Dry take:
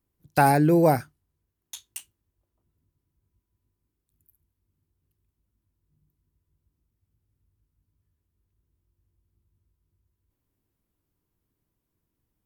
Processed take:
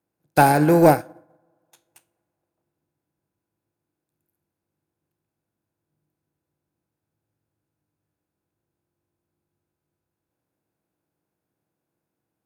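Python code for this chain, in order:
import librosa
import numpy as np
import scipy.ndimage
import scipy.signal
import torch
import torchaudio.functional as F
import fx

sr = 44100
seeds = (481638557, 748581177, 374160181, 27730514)

p1 = fx.bin_compress(x, sr, power=0.6)
p2 = scipy.signal.sosfilt(scipy.signal.butter(2, 82.0, 'highpass', fs=sr, output='sos'), p1)
p3 = p2 + fx.echo_bbd(p2, sr, ms=210, stages=2048, feedback_pct=64, wet_db=-24, dry=0)
p4 = fx.rev_fdn(p3, sr, rt60_s=2.5, lf_ratio=0.9, hf_ratio=0.3, size_ms=28.0, drr_db=12.5)
p5 = 10.0 ** (-14.5 / 20.0) * np.tanh(p4 / 10.0 ** (-14.5 / 20.0))
p6 = p4 + (p5 * librosa.db_to_amplitude(-3.0))
p7 = fx.upward_expand(p6, sr, threshold_db=-33.0, expansion=2.5)
y = p7 * librosa.db_to_amplitude(1.5)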